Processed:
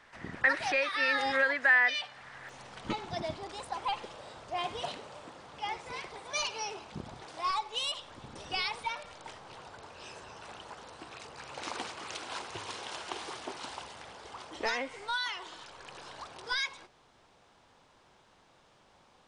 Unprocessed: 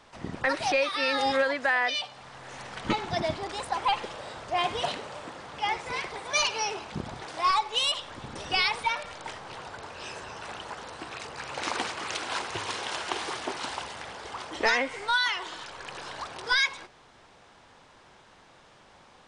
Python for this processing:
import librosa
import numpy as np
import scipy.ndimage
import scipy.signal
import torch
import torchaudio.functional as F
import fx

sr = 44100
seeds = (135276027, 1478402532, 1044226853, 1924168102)

y = fx.peak_eq(x, sr, hz=1800.0, db=fx.steps((0.0, 11.0), (2.49, -3.0)), octaves=0.81)
y = y * 10.0 ** (-7.0 / 20.0)